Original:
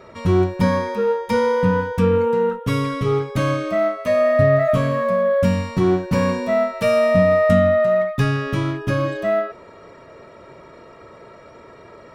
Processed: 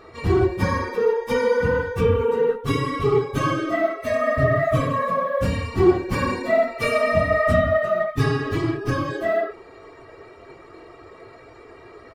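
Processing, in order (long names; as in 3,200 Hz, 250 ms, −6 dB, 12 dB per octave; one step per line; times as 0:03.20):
random phases in long frames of 50 ms
comb filter 2.6 ms, depth 61%
level −2 dB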